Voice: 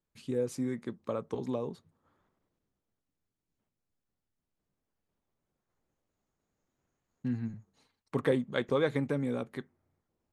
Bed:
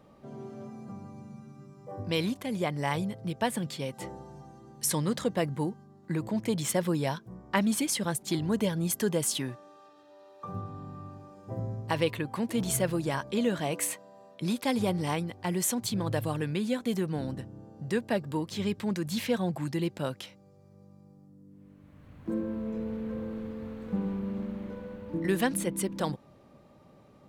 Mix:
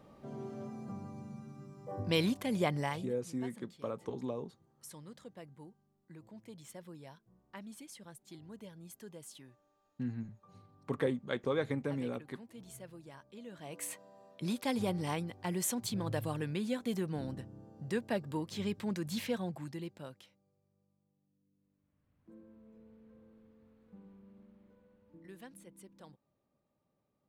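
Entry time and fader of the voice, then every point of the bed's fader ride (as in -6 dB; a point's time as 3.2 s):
2.75 s, -4.5 dB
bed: 2.76 s -1 dB
3.26 s -22 dB
13.45 s -22 dB
14.01 s -5.5 dB
19.19 s -5.5 dB
20.97 s -24.5 dB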